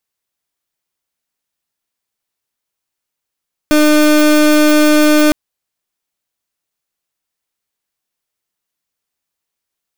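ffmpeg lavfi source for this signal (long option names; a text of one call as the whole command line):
ffmpeg -f lavfi -i "aevalsrc='0.355*(2*lt(mod(302*t,1),0.31)-1)':duration=1.61:sample_rate=44100" out.wav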